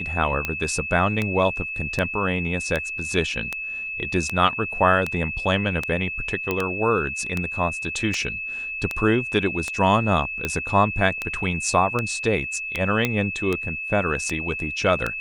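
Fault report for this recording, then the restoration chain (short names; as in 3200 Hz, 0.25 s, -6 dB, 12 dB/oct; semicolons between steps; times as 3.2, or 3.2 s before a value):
tick 78 rpm -10 dBFS
tone 2600 Hz -28 dBFS
6.51 pop -10 dBFS
13.05 pop -7 dBFS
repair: de-click; notch 2600 Hz, Q 30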